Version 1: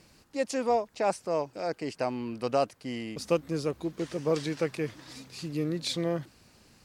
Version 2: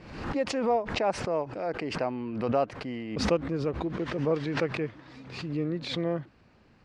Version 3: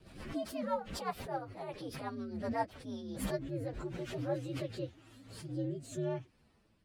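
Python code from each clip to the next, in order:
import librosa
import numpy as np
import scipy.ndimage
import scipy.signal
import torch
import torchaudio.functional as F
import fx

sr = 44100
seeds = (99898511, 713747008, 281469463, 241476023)

y1 = scipy.signal.sosfilt(scipy.signal.butter(2, 2300.0, 'lowpass', fs=sr, output='sos'), x)
y1 = fx.pre_swell(y1, sr, db_per_s=64.0)
y2 = fx.partial_stretch(y1, sr, pct=125)
y2 = fx.rotary_switch(y2, sr, hz=8.0, then_hz=0.85, switch_at_s=2.48)
y2 = F.gain(torch.from_numpy(y2), -4.5).numpy()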